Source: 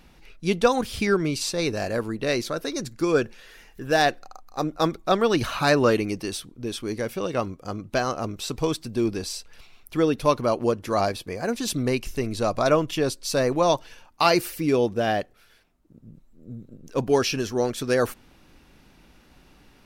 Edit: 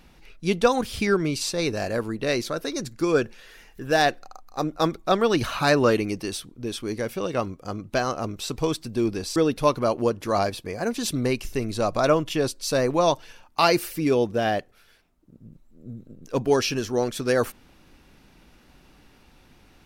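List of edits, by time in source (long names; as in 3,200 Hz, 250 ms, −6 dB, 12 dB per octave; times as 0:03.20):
0:09.36–0:09.98: remove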